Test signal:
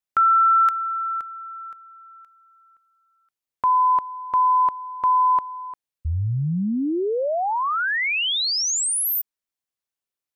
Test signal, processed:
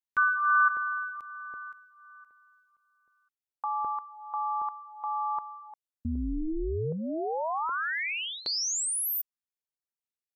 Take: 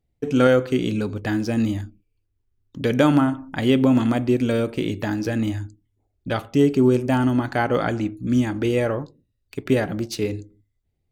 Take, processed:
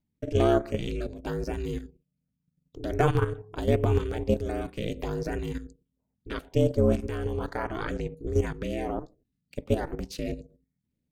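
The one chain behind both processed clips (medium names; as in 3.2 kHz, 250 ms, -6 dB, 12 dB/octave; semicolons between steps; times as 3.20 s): ring modulator 160 Hz; level held to a coarse grid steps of 10 dB; LFO notch saw up 1.3 Hz 440–4300 Hz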